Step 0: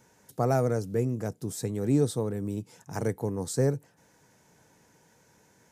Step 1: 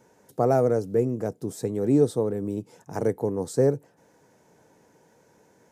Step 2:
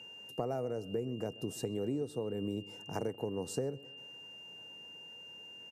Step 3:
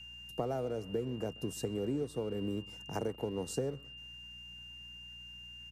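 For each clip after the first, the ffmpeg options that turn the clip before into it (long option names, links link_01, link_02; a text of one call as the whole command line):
ffmpeg -i in.wav -af "equalizer=frequency=460:width_type=o:width=2.5:gain=10,volume=-3.5dB" out.wav
ffmpeg -i in.wav -filter_complex "[0:a]aeval=exprs='val(0)+0.00631*sin(2*PI*2800*n/s)':channel_layout=same,acompressor=threshold=-28dB:ratio=10,asplit=2[link_01][link_02];[link_02]adelay=129,lowpass=frequency=2800:poles=1,volume=-20dB,asplit=2[link_03][link_04];[link_04]adelay=129,lowpass=frequency=2800:poles=1,volume=0.49,asplit=2[link_05][link_06];[link_06]adelay=129,lowpass=frequency=2800:poles=1,volume=0.49,asplit=2[link_07][link_08];[link_08]adelay=129,lowpass=frequency=2800:poles=1,volume=0.49[link_09];[link_01][link_03][link_05][link_07][link_09]amix=inputs=5:normalize=0,volume=-4dB" out.wav
ffmpeg -i in.wav -filter_complex "[0:a]aeval=exprs='val(0)+0.00126*(sin(2*PI*60*n/s)+sin(2*PI*2*60*n/s)/2+sin(2*PI*3*60*n/s)/3+sin(2*PI*4*60*n/s)/4+sin(2*PI*5*60*n/s)/5)':channel_layout=same,acrossover=split=230|1200[link_01][link_02][link_03];[link_02]aeval=exprs='sgn(val(0))*max(abs(val(0))-0.00141,0)':channel_layout=same[link_04];[link_01][link_04][link_03]amix=inputs=3:normalize=0,volume=1dB" out.wav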